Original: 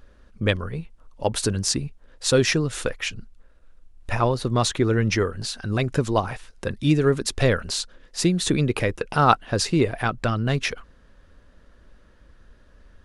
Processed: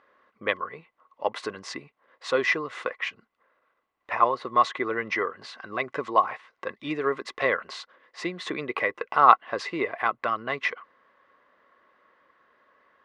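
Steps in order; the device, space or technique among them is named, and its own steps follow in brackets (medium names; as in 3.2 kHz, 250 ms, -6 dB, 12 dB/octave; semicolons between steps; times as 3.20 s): tin-can telephone (band-pass 500–2500 Hz; small resonant body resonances 1.1/2 kHz, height 14 dB, ringing for 35 ms); trim -1.5 dB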